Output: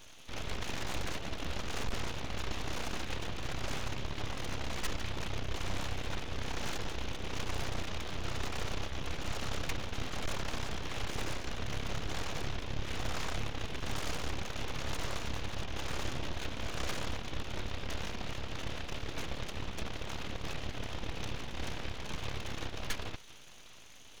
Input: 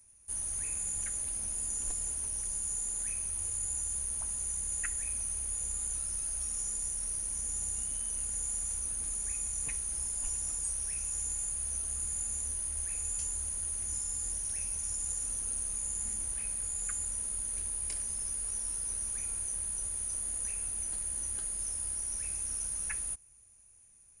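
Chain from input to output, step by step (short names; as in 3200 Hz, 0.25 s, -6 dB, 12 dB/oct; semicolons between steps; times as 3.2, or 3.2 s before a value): CVSD 32 kbps; tube stage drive 42 dB, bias 0.35; full-wave rectifier; gain +16.5 dB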